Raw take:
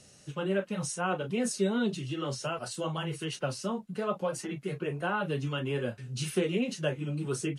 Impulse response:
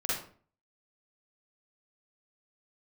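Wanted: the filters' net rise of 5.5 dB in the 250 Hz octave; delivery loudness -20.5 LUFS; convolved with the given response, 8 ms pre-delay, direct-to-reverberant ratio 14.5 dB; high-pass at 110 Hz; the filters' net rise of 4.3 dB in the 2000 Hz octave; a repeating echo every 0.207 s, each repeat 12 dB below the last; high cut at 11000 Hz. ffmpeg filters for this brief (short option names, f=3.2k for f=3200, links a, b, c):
-filter_complex "[0:a]highpass=110,lowpass=11k,equalizer=f=250:t=o:g=7.5,equalizer=f=2k:t=o:g=6.5,aecho=1:1:207|414|621:0.251|0.0628|0.0157,asplit=2[a][b];[1:a]atrim=start_sample=2205,adelay=8[c];[b][c]afir=irnorm=-1:irlink=0,volume=-21.5dB[d];[a][d]amix=inputs=2:normalize=0,volume=8dB"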